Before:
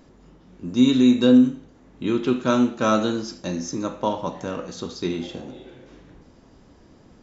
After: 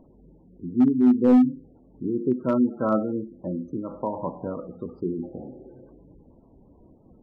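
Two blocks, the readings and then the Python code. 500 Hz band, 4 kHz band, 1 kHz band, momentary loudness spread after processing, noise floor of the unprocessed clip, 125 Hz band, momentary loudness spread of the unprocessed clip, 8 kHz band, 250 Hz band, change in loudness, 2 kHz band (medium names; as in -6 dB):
-3.0 dB, under -25 dB, -5.0 dB, 19 LU, -53 dBFS, -3.5 dB, 18 LU, no reading, -2.0 dB, -2.5 dB, -13.5 dB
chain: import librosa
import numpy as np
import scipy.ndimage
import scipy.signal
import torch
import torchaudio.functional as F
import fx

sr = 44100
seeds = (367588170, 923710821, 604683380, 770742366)

y = scipy.signal.sosfilt(scipy.signal.butter(2, 1200.0, 'lowpass', fs=sr, output='sos'), x)
y = fx.spec_gate(y, sr, threshold_db=-20, keep='strong')
y = np.clip(10.0 ** (10.5 / 20.0) * y, -1.0, 1.0) / 10.0 ** (10.5 / 20.0)
y = fx.am_noise(y, sr, seeds[0], hz=5.7, depth_pct=55)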